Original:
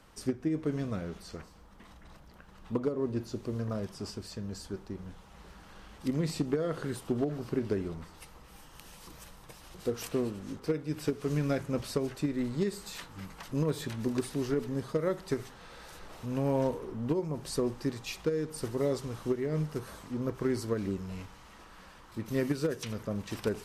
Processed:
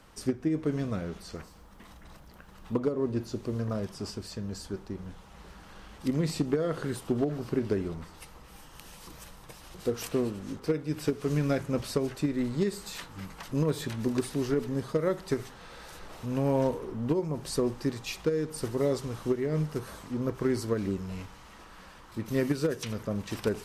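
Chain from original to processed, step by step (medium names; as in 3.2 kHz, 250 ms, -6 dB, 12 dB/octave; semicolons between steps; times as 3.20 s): 1.35–2.74 s: treble shelf 11 kHz +9.5 dB; trim +2.5 dB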